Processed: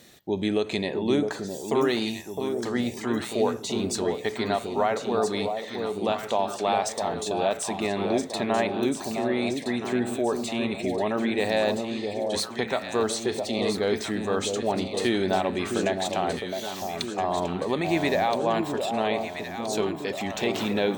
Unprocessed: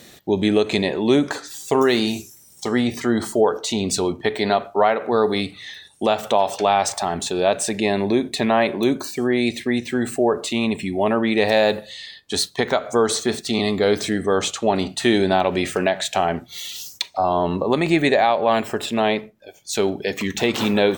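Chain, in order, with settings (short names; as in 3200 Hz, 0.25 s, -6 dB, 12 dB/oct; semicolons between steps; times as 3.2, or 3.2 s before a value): echo with dull and thin repeats by turns 0.661 s, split 870 Hz, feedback 70%, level -4.5 dB; gain -7.5 dB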